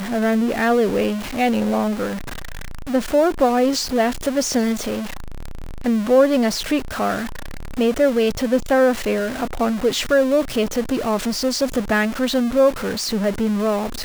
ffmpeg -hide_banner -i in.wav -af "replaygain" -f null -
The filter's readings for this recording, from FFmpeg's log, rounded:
track_gain = +0.2 dB
track_peak = 0.426